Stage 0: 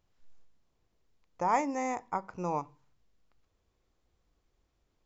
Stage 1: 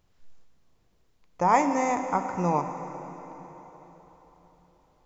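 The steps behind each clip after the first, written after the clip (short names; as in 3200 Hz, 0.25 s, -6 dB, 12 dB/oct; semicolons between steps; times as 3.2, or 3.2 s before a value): bell 160 Hz +2.5 dB 0.77 oct; plate-style reverb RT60 4.3 s, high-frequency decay 0.85×, DRR 7 dB; gain +6.5 dB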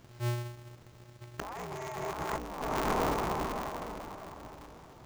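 limiter -18.5 dBFS, peak gain reduction 9.5 dB; negative-ratio compressor -39 dBFS, ratio -1; polarity switched at an audio rate 120 Hz; gain +4 dB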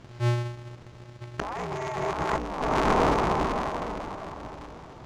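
air absorption 77 m; gain +8 dB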